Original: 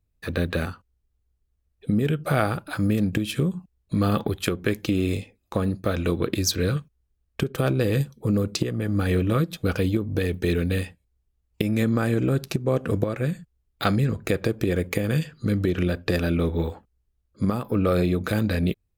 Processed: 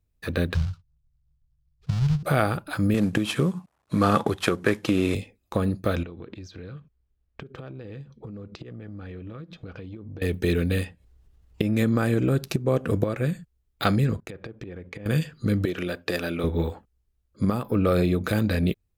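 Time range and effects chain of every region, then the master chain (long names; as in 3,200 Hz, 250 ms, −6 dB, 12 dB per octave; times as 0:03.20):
0:00.54–0:02.23: each half-wave held at its own peak + drawn EQ curve 150 Hz 0 dB, 250 Hz −29 dB, 1,400 Hz −17 dB, 1,900 Hz −20 dB, 2,800 Hz −15 dB, 5,000 Hz −11 dB, 9,500 Hz −24 dB, 15,000 Hz −30 dB
0:02.94–0:05.15: variable-slope delta modulation 64 kbit/s + high-pass filter 100 Hz + parametric band 1,100 Hz +7.5 dB 2 octaves
0:06.03–0:10.22: downward compressor 10 to 1, threshold −35 dBFS + high-frequency loss of the air 190 metres
0:10.84–0:11.77: high-shelf EQ 6,300 Hz −10 dB + upward compression, threshold −42 dBFS + notch filter 2,300 Hz, Q 18
0:14.20–0:15.06: downward expander −34 dBFS + treble cut that deepens with the level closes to 2,500 Hz, closed at −20.5 dBFS + downward compressor 10 to 1, threshold −34 dBFS
0:15.65–0:16.44: high-pass filter 450 Hz 6 dB per octave + one half of a high-frequency compander decoder only
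whole clip: no processing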